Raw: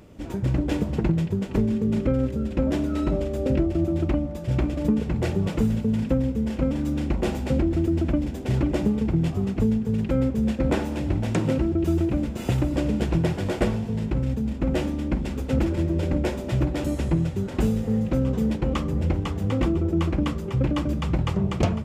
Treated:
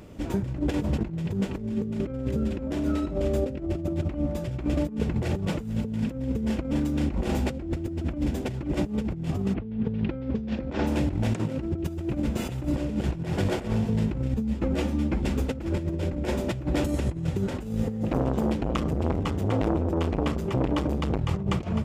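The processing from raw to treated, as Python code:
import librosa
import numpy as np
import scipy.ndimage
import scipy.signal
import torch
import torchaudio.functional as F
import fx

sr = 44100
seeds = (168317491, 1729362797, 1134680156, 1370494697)

y = fx.lowpass(x, sr, hz=fx.line((9.53, 3200.0), (10.86, 6200.0)), slope=24, at=(9.53, 10.86), fade=0.02)
y = fx.ensemble(y, sr, at=(14.34, 15.23))
y = fx.transformer_sat(y, sr, knee_hz=550.0, at=(18.03, 21.19))
y = fx.over_compress(y, sr, threshold_db=-26.0, ratio=-0.5)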